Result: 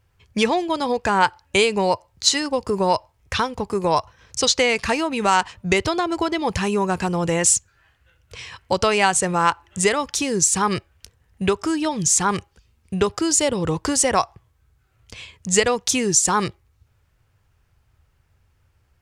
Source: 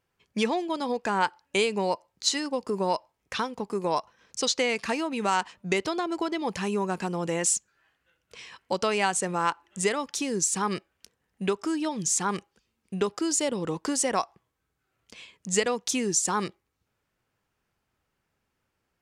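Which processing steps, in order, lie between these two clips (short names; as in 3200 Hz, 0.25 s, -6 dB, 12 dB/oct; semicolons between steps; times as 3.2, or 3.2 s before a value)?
resonant low shelf 140 Hz +13.5 dB, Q 1.5; gain +8 dB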